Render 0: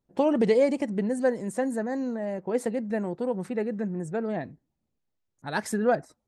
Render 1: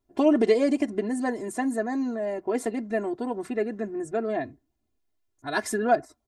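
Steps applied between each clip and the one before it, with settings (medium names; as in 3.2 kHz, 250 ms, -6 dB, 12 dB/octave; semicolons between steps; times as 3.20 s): comb 2.9 ms, depth 96%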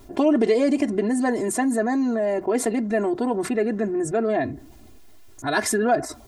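level flattener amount 50%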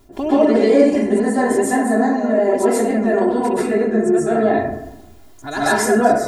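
plate-style reverb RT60 0.86 s, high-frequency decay 0.45×, pre-delay 115 ms, DRR -9.5 dB; trim -4 dB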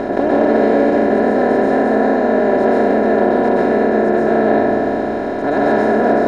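spectral levelling over time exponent 0.2; distance through air 320 m; trim -6 dB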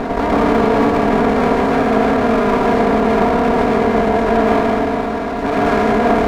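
comb filter that takes the minimum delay 4.3 ms; trim +1 dB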